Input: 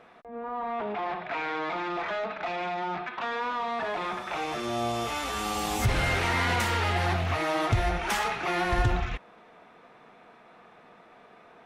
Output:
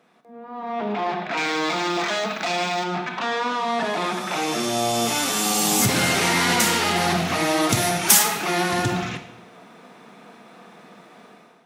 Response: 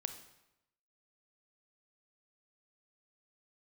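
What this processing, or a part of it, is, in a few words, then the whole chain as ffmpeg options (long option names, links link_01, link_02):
far laptop microphone: -filter_complex "[0:a]asettb=1/sr,asplit=3[link_01][link_02][link_03];[link_01]atrim=end=1.374[link_04];[link_02]atrim=start=1.37:end=2.84,asetpts=PTS-STARTPTS,afade=type=in:duration=0.004:curve=qsin,afade=type=out:start_time=1.466:duration=0.004:curve=qsin,aemphasis=mode=production:type=75fm[link_05];[link_03]atrim=start=2.836[link_06];[link_04][link_05]acrossfade=duration=0.004:curve1=hsin:curve2=qsin[link_07];[link_07][link_06]acrossfade=duration=0.004:curve1=qsin:curve2=hsin,asettb=1/sr,asplit=3[link_08][link_09][link_10];[link_08]atrim=end=7.694[link_11];[link_09]atrim=start=7.69:end=8.23,asetpts=PTS-STARTPTS,afade=type=in:duration=0.004:curve=qsin,afade=type=out:start_time=0.536:duration=0.004:curve=qsin,aemphasis=mode=production:type=50kf[link_12];[link_10]atrim=start=8.226[link_13];[link_11][link_12]acrossfade=duration=0.004:curve1=hsin:curve2=qsin[link_14];[link_14][link_13]acrossfade=duration=0.004:curve1=qsin:curve2=hsin[link_15];[1:a]atrim=start_sample=2205[link_16];[link_15][link_16]afir=irnorm=-1:irlink=0,highpass=frequency=180:width=0.5412,highpass=frequency=180:width=1.3066,dynaudnorm=framelen=470:gausssize=3:maxgain=13dB,bass=frequency=250:gain=13,treble=frequency=4000:gain=13,volume=-6.5dB"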